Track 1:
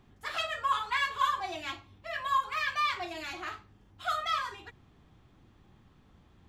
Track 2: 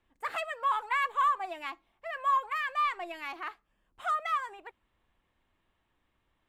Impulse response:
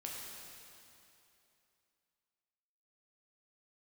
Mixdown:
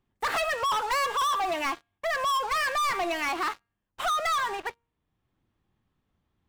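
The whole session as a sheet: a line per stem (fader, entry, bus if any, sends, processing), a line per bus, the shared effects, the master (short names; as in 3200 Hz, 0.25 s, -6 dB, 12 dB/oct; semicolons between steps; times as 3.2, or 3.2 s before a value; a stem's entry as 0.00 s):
-15.5 dB, 0.00 s, no send, auto duck -10 dB, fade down 0.45 s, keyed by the second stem
-2.5 dB, 0.00 s, no send, de-hum 233.8 Hz, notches 38; sample leveller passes 5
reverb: off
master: compressor 2:1, threshold -27 dBFS, peak gain reduction 3 dB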